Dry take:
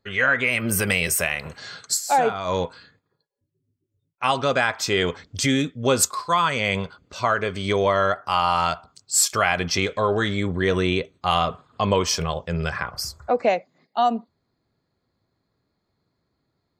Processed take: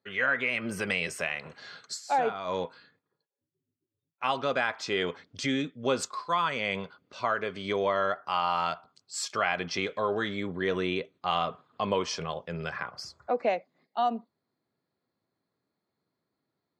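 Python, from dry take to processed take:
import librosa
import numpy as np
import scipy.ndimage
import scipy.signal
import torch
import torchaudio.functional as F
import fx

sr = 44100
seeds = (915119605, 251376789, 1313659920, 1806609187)

y = fx.bandpass_edges(x, sr, low_hz=170.0, high_hz=4600.0)
y = y * librosa.db_to_amplitude(-7.0)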